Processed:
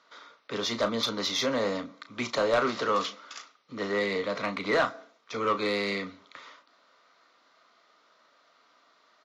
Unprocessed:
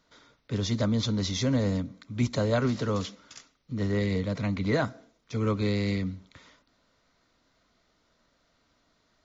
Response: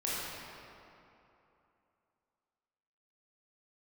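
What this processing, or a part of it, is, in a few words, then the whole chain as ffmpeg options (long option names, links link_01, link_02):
intercom: -filter_complex "[0:a]highpass=490,lowpass=4900,equalizer=frequency=1200:width_type=o:width=0.28:gain=7.5,asoftclip=type=tanh:threshold=-24dB,asplit=2[link_01][link_02];[link_02]adelay=35,volume=-10dB[link_03];[link_01][link_03]amix=inputs=2:normalize=0,volume=6.5dB"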